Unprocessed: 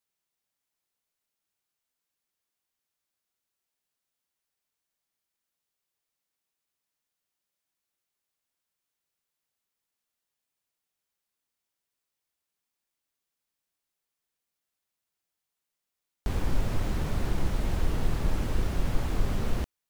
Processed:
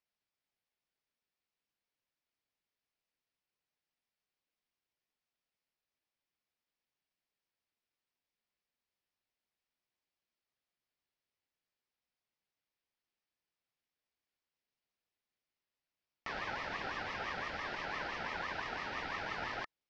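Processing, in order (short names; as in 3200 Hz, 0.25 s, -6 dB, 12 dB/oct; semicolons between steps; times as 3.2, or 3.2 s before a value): vibrato 0.61 Hz 8.7 cents; elliptic band-pass 250–4000 Hz, stop band 40 dB; ring modulator with a swept carrier 1300 Hz, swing 20%, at 5.9 Hz; gain +1 dB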